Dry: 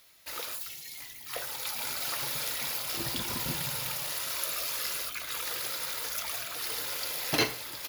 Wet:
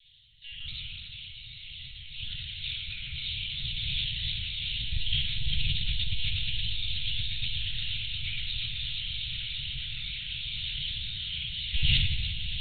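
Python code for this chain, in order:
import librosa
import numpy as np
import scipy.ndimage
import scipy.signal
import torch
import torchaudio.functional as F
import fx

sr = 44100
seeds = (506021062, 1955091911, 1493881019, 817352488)

y = fx.spec_dropout(x, sr, seeds[0], share_pct=28)
y = fx.low_shelf(y, sr, hz=160.0, db=11.0)
y = (np.mod(10.0 ** (18.0 / 20.0) * y + 1.0, 2.0) - 1.0) / 10.0 ** (18.0 / 20.0)
y = fx.stretch_grains(y, sr, factor=1.6, grain_ms=53.0)
y = fx.room_shoebox(y, sr, seeds[1], volume_m3=480.0, walls='mixed', distance_m=7.6)
y = fx.lpc_monotone(y, sr, seeds[2], pitch_hz=280.0, order=10)
y = scipy.signal.sosfilt(scipy.signal.ellip(3, 1.0, 80, [130.0, 3000.0], 'bandstop', fs=sr, output='sos'), y)
y = fx.high_shelf(y, sr, hz=2600.0, db=10.0)
y = fx.echo_swell(y, sr, ms=119, loudest=8, wet_db=-17.0)
y = fx.sustainer(y, sr, db_per_s=27.0)
y = F.gain(torch.from_numpy(y), -8.0).numpy()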